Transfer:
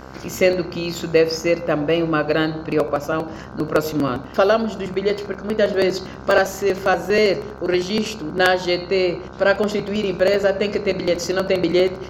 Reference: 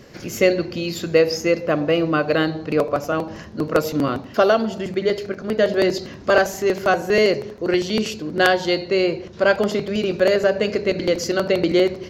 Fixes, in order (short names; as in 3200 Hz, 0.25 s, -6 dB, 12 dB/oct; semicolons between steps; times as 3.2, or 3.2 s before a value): de-hum 65.2 Hz, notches 24; interpolate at 0.53/5.18/6.31/7.05/10.34, 2.5 ms